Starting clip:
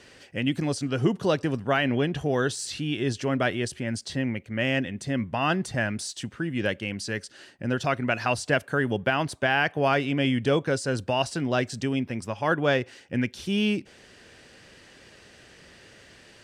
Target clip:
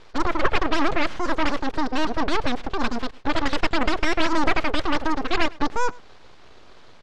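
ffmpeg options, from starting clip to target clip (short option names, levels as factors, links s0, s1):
-filter_complex "[0:a]asetrate=103194,aresample=44100,equalizer=f=200:t=o:w=0.61:g=14,aeval=exprs='abs(val(0))':c=same,lowpass=4500,aemphasis=mode=reproduction:type=50fm,asplit=2[s0][s1];[s1]aecho=0:1:105:0.0668[s2];[s0][s2]amix=inputs=2:normalize=0,volume=2"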